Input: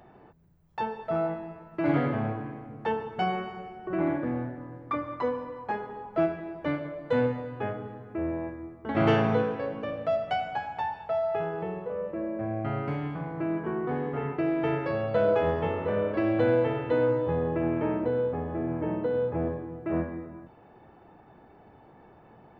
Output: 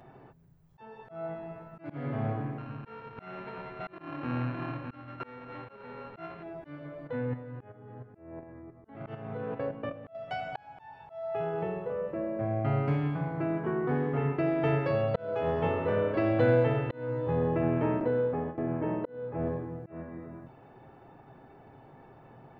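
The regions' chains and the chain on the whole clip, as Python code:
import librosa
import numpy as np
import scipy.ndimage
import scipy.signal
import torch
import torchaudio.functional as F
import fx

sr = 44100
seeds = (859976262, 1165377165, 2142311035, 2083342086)

y = fx.chain(x, sr, fx.sample_sort(block=32),
    fx.lowpass(hz=2500.0, slope=24),
    fx.echo_single(ms=610, db=-11.0), at=(2.58, 6.43))
y = fx.chain(y, sr, fx.bessel_lowpass(hz=2300.0, order=2),
    fx.level_steps(step_db=11), at=(7.07, 10.15))
y = fx.chain(y, sr, fx.lowpass(hz=3700.0, slope=12),
    fx.gate_hold(open_db=-24.0, close_db=-26.0, hold_ms=71.0, range_db=-21, attack_ms=1.4, release_ms=100.0),
    fx.peak_eq(hz=97.0, db=-7.0, octaves=1.2), at=(18.0, 19.39))
y = fx.peak_eq(y, sr, hz=130.0, db=4.5, octaves=0.37)
y = y + 0.31 * np.pad(y, (int(7.5 * sr / 1000.0), 0))[:len(y)]
y = fx.auto_swell(y, sr, attack_ms=508.0)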